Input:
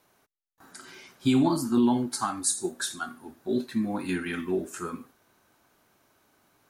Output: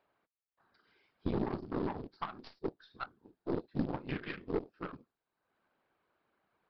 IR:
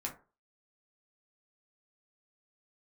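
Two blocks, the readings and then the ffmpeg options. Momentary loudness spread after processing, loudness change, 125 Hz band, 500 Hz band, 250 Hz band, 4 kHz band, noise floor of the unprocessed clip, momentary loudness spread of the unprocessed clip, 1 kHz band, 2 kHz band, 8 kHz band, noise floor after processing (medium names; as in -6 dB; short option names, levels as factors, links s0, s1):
10 LU, -12.0 dB, -7.0 dB, -7.5 dB, -13.0 dB, -17.0 dB, -69 dBFS, 18 LU, -10.0 dB, -10.0 dB, under -40 dB, under -85 dBFS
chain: -filter_complex "[0:a]afwtdn=0.02,equalizer=f=250:w=6.7:g=-11.5,asplit=2[s0][s1];[s1]acompressor=threshold=0.01:ratio=10,volume=1.33[s2];[s0][s2]amix=inputs=2:normalize=0,alimiter=limit=0.126:level=0:latency=1:release=192,acrossover=split=120|3200[s3][s4][s5];[s4]acompressor=mode=upward:threshold=0.00316:ratio=2.5[s6];[s3][s6][s5]amix=inputs=3:normalize=0,afftfilt=real='hypot(re,im)*cos(2*PI*random(0))':imag='hypot(re,im)*sin(2*PI*random(1))':win_size=512:overlap=0.75,acrusher=bits=7:mode=log:mix=0:aa=0.000001,aeval=exprs='0.1*(cos(1*acos(clip(val(0)/0.1,-1,1)))-cos(1*PI/2))+0.0224*(cos(2*acos(clip(val(0)/0.1,-1,1)))-cos(2*PI/2))+0.000794*(cos(6*acos(clip(val(0)/0.1,-1,1)))-cos(6*PI/2))+0.00891*(cos(7*acos(clip(val(0)/0.1,-1,1)))-cos(7*PI/2))':c=same,aresample=11025,aresample=44100,volume=0.891"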